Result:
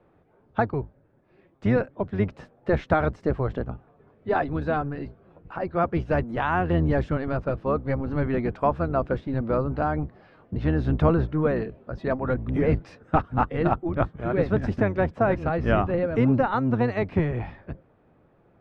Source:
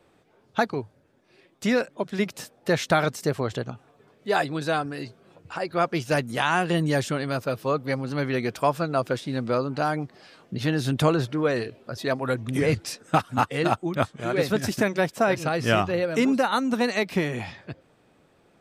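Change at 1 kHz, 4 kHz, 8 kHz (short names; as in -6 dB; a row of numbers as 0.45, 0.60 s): -1.0 dB, under -10 dB, under -25 dB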